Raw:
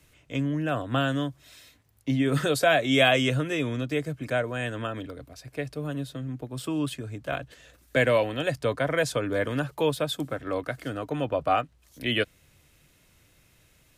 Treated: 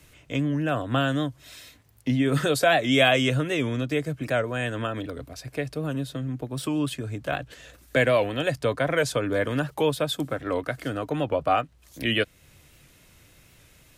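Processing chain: in parallel at -0.5 dB: compressor, threshold -36 dBFS, peak gain reduction 19 dB; on the sum: record warp 78 rpm, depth 100 cents

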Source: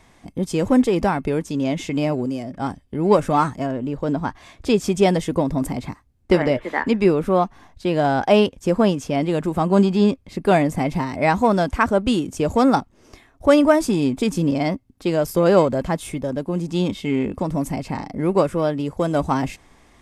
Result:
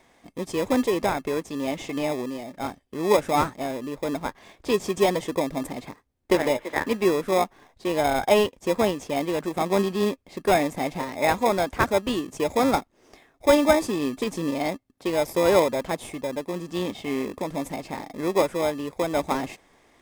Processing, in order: tone controls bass -15 dB, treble -2 dB; in parallel at -4 dB: sample-and-hold 30×; on the sum: gain -4.5 dB

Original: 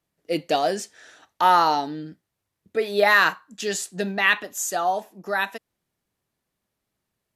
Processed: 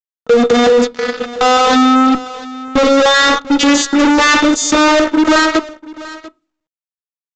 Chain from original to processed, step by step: vocoder on a gliding note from A#3, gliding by +7 st; de-esser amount 70%; tone controls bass +9 dB, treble -5 dB; notch 980 Hz, Q 5.2; sample leveller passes 2; fuzz box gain 49 dB, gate -54 dBFS; small resonant body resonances 470/1300/3600 Hz, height 15 dB, ringing for 95 ms; soft clip -0.5 dBFS, distortion -19 dB; echo 0.692 s -20.5 dB; reverb RT60 0.30 s, pre-delay 4 ms, DRR 19.5 dB; maximiser +9 dB; gain -3.5 dB; µ-law 128 kbps 16000 Hz

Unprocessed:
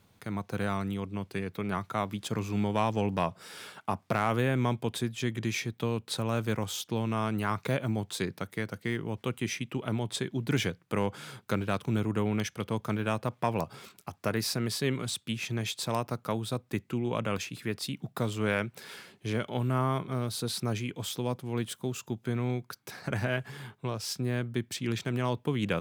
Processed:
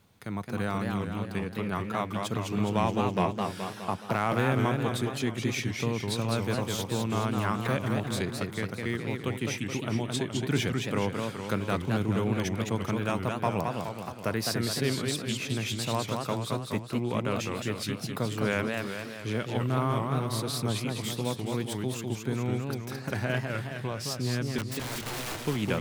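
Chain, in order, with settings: 24.58–25.39 wrapped overs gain 32 dB; warbling echo 0.21 s, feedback 56%, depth 220 cents, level -4 dB

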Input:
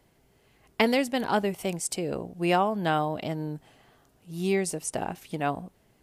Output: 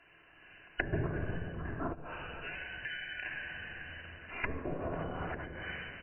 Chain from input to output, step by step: four-band scrambler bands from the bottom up 4321; dynamic EQ 1500 Hz, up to +4 dB, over -46 dBFS, Q 1.2; limiter -17.5 dBFS, peak gain reduction 11 dB; bell 270 Hz -4 dB 0.73 oct; early reflections 12 ms -14.5 dB, 49 ms -11.5 dB; reverb RT60 2.1 s, pre-delay 3 ms, DRR -2.5 dB; vocal rider within 4 dB 0.5 s; brick-wall FIR low-pass 3000 Hz; 1.92–4.44 compressor 3:1, threshold -57 dBFS, peak gain reduction 19.5 dB; 4.5–5.17 spectral repair 740–1600 Hz; treble ducked by the level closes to 460 Hz, closed at -41 dBFS; gain +14.5 dB

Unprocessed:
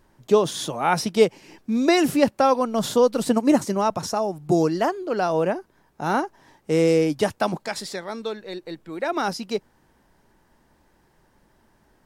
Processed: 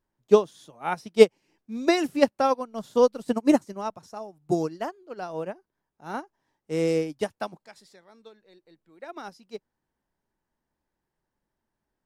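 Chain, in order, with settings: upward expander 2.5:1, over -28 dBFS; gain +3.5 dB

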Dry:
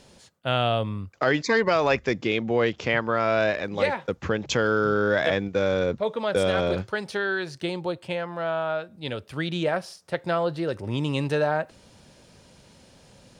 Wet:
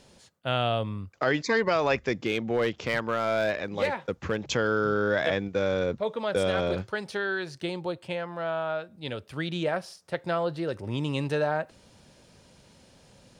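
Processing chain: 2.13–4.44 hard clip -15.5 dBFS, distortion -22 dB; gain -3 dB

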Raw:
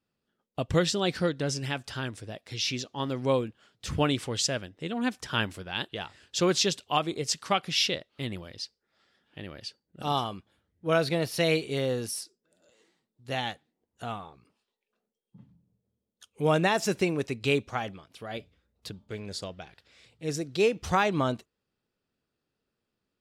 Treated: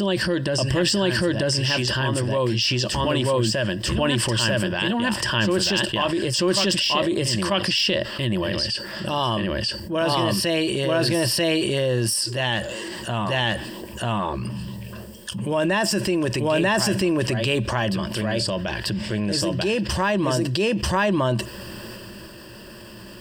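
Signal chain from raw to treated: de-esser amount 60%; ripple EQ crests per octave 1.3, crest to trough 12 dB; transient shaper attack -4 dB, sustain +5 dB; on a send: reverse echo 0.94 s -3.5 dB; on the sum: fast leveller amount 70%

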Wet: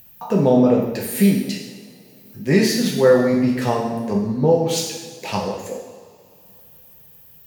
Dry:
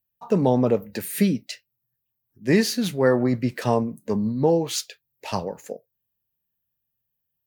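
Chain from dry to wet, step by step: upward compressor, threshold -28 dBFS; two-slope reverb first 0.98 s, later 3.4 s, from -19 dB, DRR -2 dB

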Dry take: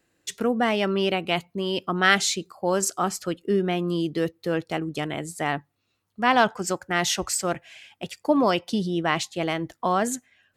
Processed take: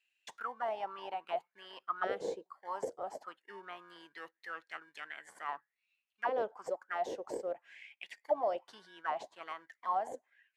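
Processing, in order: RIAA curve recording; in parallel at -11 dB: sample-rate reducer 1300 Hz, jitter 0%; on the sum: auto-wah 490–2700 Hz, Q 7.7, down, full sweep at -16 dBFS; gain -1 dB

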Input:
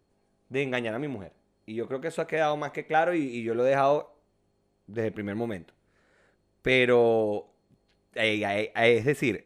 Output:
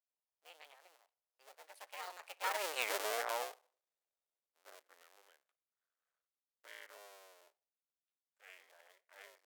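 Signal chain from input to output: cycle switcher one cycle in 2, muted; Doppler pass-by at 2.83, 59 m/s, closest 5.8 m; HPF 520 Hz 24 dB/oct; tilt +2 dB/oct; gain +2 dB

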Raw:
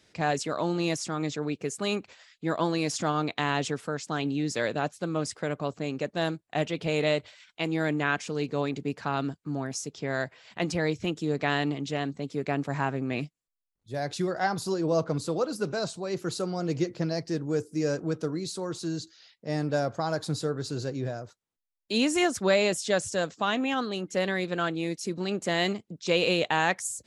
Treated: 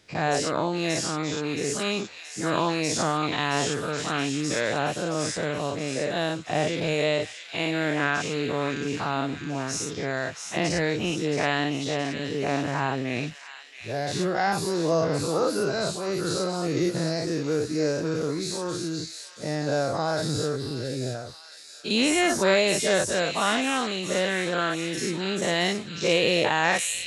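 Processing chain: spectral dilation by 0.12 s; 20.56–21.15 fixed phaser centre 2900 Hz, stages 4; on a send: thin delay 0.673 s, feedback 59%, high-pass 2200 Hz, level -6.5 dB; on the sum: gain -1.5 dB

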